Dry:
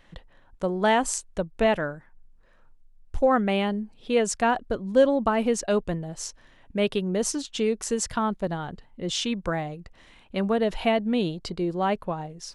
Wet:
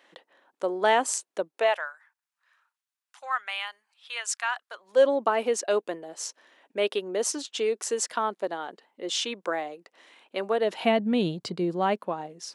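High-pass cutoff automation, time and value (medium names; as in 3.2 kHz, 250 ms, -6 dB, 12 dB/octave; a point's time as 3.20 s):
high-pass 24 dB/octave
1.50 s 310 Hz
1.91 s 1.1 kHz
4.66 s 1.1 kHz
5.07 s 330 Hz
10.60 s 330 Hz
11.14 s 81 Hz
11.95 s 220 Hz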